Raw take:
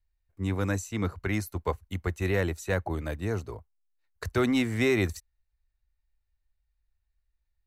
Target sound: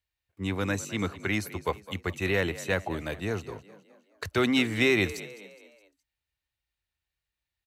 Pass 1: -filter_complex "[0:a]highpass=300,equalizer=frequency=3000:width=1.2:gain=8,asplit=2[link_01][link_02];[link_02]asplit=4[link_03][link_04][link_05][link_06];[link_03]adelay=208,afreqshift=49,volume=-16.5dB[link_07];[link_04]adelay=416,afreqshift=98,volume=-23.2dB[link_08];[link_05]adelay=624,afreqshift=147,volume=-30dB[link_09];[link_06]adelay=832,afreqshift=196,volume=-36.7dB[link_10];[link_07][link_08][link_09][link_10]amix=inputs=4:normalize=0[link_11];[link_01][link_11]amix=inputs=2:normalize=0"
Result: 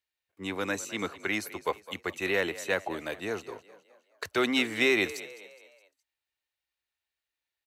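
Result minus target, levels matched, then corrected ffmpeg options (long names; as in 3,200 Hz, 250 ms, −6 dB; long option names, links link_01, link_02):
125 Hz band −11.5 dB
-filter_complex "[0:a]highpass=110,equalizer=frequency=3000:width=1.2:gain=8,asplit=2[link_01][link_02];[link_02]asplit=4[link_03][link_04][link_05][link_06];[link_03]adelay=208,afreqshift=49,volume=-16.5dB[link_07];[link_04]adelay=416,afreqshift=98,volume=-23.2dB[link_08];[link_05]adelay=624,afreqshift=147,volume=-30dB[link_09];[link_06]adelay=832,afreqshift=196,volume=-36.7dB[link_10];[link_07][link_08][link_09][link_10]amix=inputs=4:normalize=0[link_11];[link_01][link_11]amix=inputs=2:normalize=0"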